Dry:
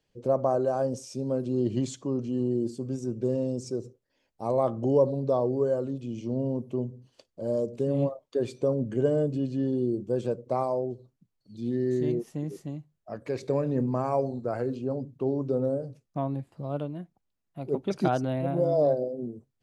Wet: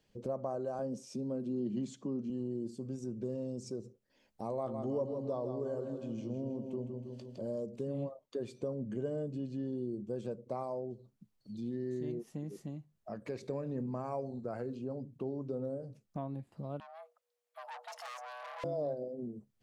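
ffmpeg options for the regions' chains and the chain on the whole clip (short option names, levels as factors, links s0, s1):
-filter_complex "[0:a]asettb=1/sr,asplit=3[s0][s1][s2];[s0]atrim=end=0.794[s3];[s1]atrim=start=0.79:end=2.3,asetpts=PTS-STARTPTS,afade=t=in:d=0.004:c=qsin,afade=t=out:st=1.506:d=0.004:c=qsin,highpass=f=170:w=0.5412,highpass=f=170:w=1.3066,bass=f=250:g=10,treble=f=4000:g=-3[s4];[s2]atrim=start=2.296[s5];[s3][s4]acrossfade=d=0.004:c1=hsin:c2=qsin[s6];[s6][s5]acrossfade=d=0.004:c1=qsin:c2=hsin,asettb=1/sr,asplit=3[s7][s8][s9];[s7]atrim=end=4.504[s10];[s8]atrim=start=4.5:end=7.46,asetpts=PTS-STARTPTS,afade=t=in:d=0.004:c=qsin,afade=t=out:st=2.956:d=0.004:c=qsin,asplit=2[s11][s12];[s12]adelay=18,volume=0.237[s13];[s11][s13]amix=inputs=2:normalize=0,atrim=end_sample=130536,aecho=1:1:160|320|480|640|800|960:0.422|0.202|0.0972|0.0466|0.0224|0.0107,atrim=end_sample=130536[s14];[s9]atrim=start=7.456[s15];[s10][s14]acrossfade=d=0.004:c1=hsin:c2=qsin[s16];[s16][s15]acrossfade=d=0.004:c1=qsin:c2=hsin,asettb=1/sr,asplit=3[s17][s18][s19];[s17]atrim=end=16.804[s20];[s18]atrim=start=16.8:end=18.64,asetpts=PTS-STARTPTS,afade=t=in:d=0.004:c=qsin,afade=t=out:st=1.836:d=0.004:c=qsin,aeval=exprs='(tanh(70.8*val(0)+0.35)-tanh(0.35))/70.8':c=same,afreqshift=480,highpass=f=1300:p=1[s21];[s19]atrim=start=18.636[s22];[s20][s21]acrossfade=d=0.004:c1=hsin:c2=qsin[s23];[s23][s22]acrossfade=d=0.004:c1=qsin:c2=hsin,equalizer=f=210:w=7.9:g=8.5,acompressor=threshold=0.00398:ratio=2,volume=1.26"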